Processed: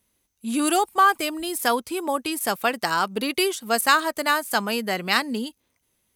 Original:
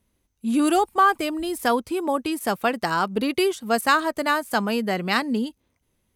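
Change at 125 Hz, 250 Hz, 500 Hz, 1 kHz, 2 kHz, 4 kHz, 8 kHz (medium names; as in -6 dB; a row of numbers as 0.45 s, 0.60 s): -5.0 dB, -3.5 dB, -2.0 dB, 0.0 dB, +1.5 dB, +3.5 dB, +6.5 dB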